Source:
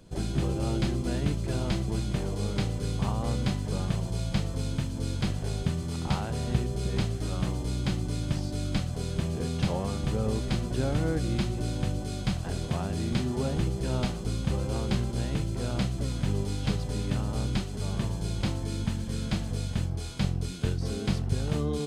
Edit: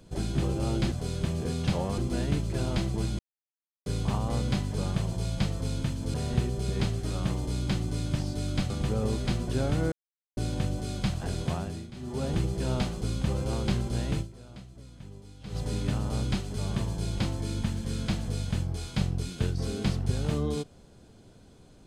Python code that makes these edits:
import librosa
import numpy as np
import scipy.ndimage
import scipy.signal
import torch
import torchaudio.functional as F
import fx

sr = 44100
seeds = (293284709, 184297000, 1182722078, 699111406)

y = fx.edit(x, sr, fx.silence(start_s=2.13, length_s=0.67),
    fx.cut(start_s=5.08, length_s=1.23),
    fx.move(start_s=8.87, length_s=1.06, to_s=0.92),
    fx.silence(start_s=11.15, length_s=0.45),
    fx.fade_down_up(start_s=12.75, length_s=0.79, db=-19.0, fade_s=0.39),
    fx.fade_down_up(start_s=15.44, length_s=1.35, db=-17.5, fade_s=0.38, curve='exp'), tone=tone)